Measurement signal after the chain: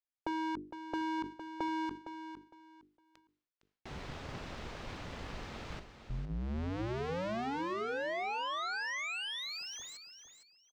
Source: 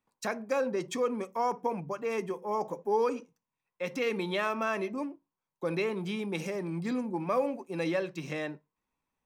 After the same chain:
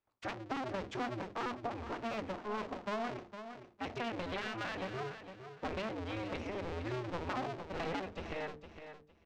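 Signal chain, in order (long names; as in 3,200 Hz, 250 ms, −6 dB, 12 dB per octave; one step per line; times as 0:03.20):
sub-harmonics by changed cycles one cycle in 2, inverted
mains-hum notches 50/100/150/200/250/300/350/400/450 Hz
downward compressor, threshold −29 dBFS
high-frequency loss of the air 160 metres
on a send: repeating echo 459 ms, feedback 23%, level −10 dB
on the sum: level that may fall only so fast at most 140 dB per second
level −4.5 dB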